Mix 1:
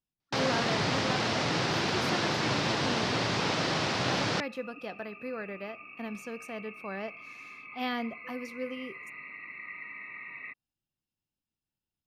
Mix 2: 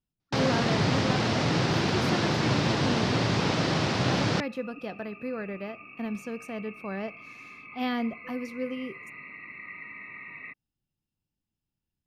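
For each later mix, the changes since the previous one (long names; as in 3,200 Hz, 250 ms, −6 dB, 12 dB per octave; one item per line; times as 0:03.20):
master: add low-shelf EQ 340 Hz +9 dB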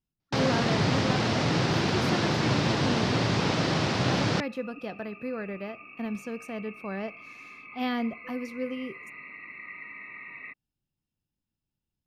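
second sound: add parametric band 120 Hz −6 dB 1.7 octaves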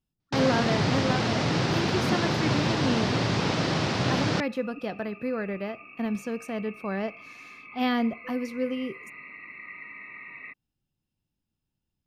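speech +4.0 dB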